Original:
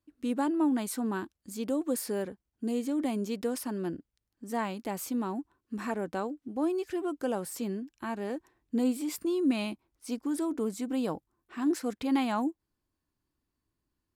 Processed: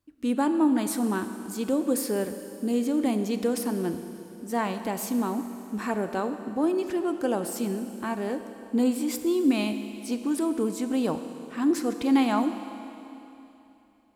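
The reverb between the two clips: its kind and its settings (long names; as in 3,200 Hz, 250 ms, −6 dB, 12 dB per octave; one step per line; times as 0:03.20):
four-comb reverb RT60 3.1 s, combs from 26 ms, DRR 8.5 dB
level +4.5 dB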